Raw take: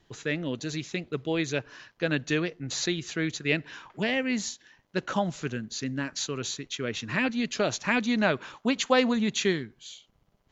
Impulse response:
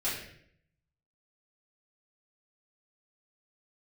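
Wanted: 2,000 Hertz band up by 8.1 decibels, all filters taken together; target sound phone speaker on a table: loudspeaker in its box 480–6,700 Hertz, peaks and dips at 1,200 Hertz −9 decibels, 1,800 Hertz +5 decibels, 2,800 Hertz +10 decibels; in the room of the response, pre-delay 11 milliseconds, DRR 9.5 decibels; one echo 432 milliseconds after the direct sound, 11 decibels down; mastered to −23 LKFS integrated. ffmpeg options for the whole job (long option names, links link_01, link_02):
-filter_complex "[0:a]equalizer=frequency=2000:width_type=o:gain=4.5,aecho=1:1:432:0.282,asplit=2[link_01][link_02];[1:a]atrim=start_sample=2205,adelay=11[link_03];[link_02][link_03]afir=irnorm=-1:irlink=0,volume=-16.5dB[link_04];[link_01][link_04]amix=inputs=2:normalize=0,highpass=frequency=480:width=0.5412,highpass=frequency=480:width=1.3066,equalizer=frequency=1200:width_type=q:width=4:gain=-9,equalizer=frequency=1800:width_type=q:width=4:gain=5,equalizer=frequency=2800:width_type=q:width=4:gain=10,lowpass=frequency=6700:width=0.5412,lowpass=frequency=6700:width=1.3066,volume=2dB"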